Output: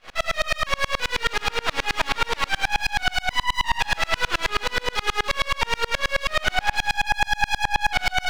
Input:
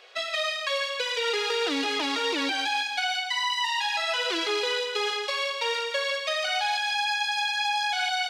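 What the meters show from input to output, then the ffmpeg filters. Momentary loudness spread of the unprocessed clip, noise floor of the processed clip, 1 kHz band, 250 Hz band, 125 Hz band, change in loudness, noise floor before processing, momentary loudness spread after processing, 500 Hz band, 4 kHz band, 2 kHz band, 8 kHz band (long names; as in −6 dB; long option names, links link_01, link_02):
2 LU, −43 dBFS, +4.0 dB, −3.5 dB, can't be measured, +2.5 dB, −33 dBFS, 2 LU, −1.5 dB, −0.5 dB, +4.5 dB, +3.0 dB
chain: -af "apsyclip=31dB,asoftclip=type=hard:threshold=-1.5dB,highpass=720,lowpass=2100,aeval=exprs='max(val(0),0)':channel_layout=same,aeval=exprs='val(0)*pow(10,-33*if(lt(mod(-9.4*n/s,1),2*abs(-9.4)/1000),1-mod(-9.4*n/s,1)/(2*abs(-9.4)/1000),(mod(-9.4*n/s,1)-2*abs(-9.4)/1000)/(1-2*abs(-9.4)/1000))/20)':channel_layout=same,volume=-3dB"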